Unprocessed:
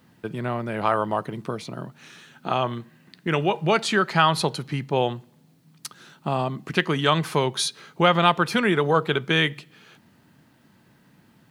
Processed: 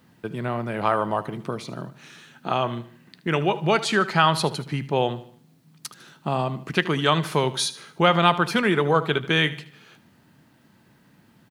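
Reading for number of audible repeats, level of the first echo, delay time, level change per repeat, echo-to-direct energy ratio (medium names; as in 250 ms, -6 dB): 3, -16.0 dB, 76 ms, -7.5 dB, -15.0 dB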